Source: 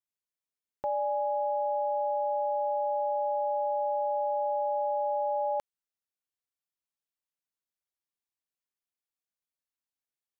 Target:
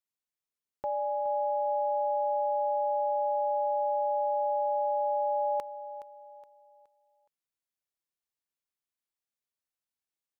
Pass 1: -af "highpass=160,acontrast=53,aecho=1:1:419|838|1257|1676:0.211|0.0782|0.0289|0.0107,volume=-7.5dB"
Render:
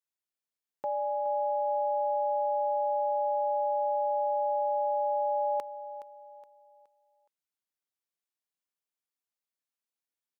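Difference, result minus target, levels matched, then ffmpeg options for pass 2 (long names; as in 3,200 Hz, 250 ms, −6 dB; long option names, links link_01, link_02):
125 Hz band −5.5 dB
-af "acontrast=53,aecho=1:1:419|838|1257|1676:0.211|0.0782|0.0289|0.0107,volume=-7.5dB"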